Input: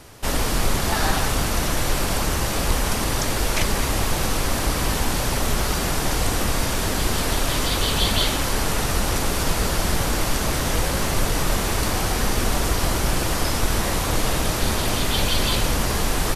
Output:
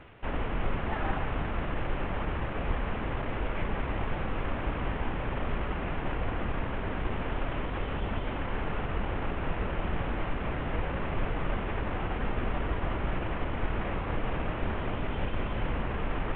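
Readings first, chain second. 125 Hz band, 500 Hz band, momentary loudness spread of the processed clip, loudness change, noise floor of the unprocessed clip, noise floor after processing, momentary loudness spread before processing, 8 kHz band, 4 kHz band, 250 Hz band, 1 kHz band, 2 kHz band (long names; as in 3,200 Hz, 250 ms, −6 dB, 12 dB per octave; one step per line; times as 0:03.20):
−8.5 dB, −8.5 dB, 1 LU, −11.5 dB, −24 dBFS, −34 dBFS, 2 LU, below −40 dB, −21.5 dB, −8.5 dB, −9.0 dB, −10.5 dB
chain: variable-slope delta modulation 16 kbit/s
reversed playback
upward compression, threshold −28 dBFS
reversed playback
level −7.5 dB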